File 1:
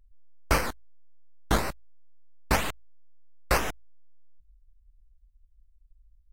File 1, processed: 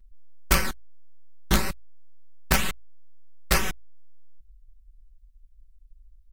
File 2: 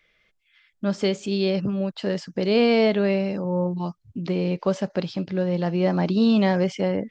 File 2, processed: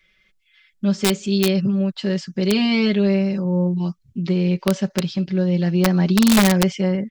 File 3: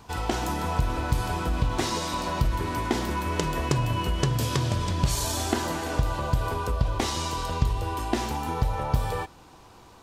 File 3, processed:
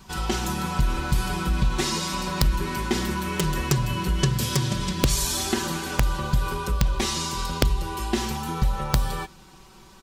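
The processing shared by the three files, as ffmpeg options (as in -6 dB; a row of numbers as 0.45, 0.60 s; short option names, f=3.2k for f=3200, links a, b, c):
-af "equalizer=f=690:w=0.74:g=-9,aecho=1:1:5.3:0.99,aeval=exprs='(mod(3.55*val(0)+1,2)-1)/3.55':c=same,volume=2dB"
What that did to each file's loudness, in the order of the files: +2.5, +4.0, +2.0 LU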